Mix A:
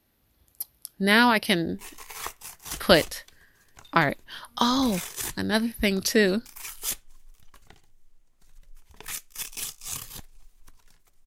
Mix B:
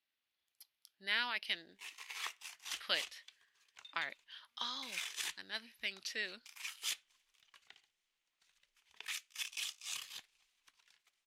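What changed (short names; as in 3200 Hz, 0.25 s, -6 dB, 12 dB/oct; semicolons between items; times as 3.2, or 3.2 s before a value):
speech -10.0 dB; master: add band-pass 2900 Hz, Q 1.4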